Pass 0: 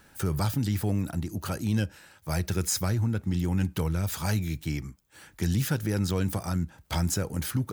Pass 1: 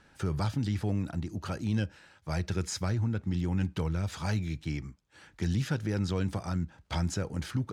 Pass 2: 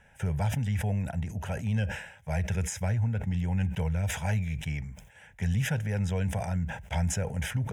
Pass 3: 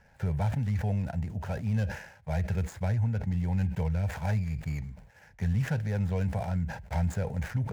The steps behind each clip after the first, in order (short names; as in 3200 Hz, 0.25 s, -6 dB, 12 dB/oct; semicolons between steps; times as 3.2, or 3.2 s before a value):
LPF 5500 Hz 12 dB/oct; gain -3 dB
fixed phaser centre 1200 Hz, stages 6; sustainer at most 83 dB/s; gain +4 dB
median filter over 15 samples